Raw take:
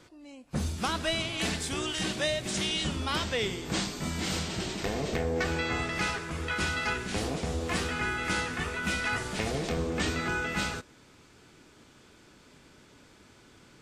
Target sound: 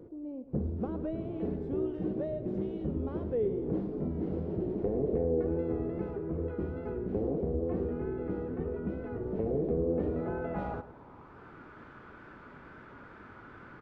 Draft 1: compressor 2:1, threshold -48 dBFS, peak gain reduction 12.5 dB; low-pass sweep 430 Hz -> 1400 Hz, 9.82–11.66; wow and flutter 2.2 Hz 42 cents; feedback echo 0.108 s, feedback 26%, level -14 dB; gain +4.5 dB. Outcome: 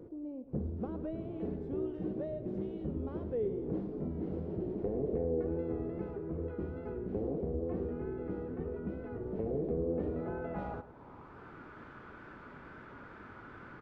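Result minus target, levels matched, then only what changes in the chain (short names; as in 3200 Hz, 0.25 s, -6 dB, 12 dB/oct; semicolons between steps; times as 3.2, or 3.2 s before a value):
compressor: peak gain reduction +4 dB
change: compressor 2:1, threshold -40.5 dBFS, peak gain reduction 8.5 dB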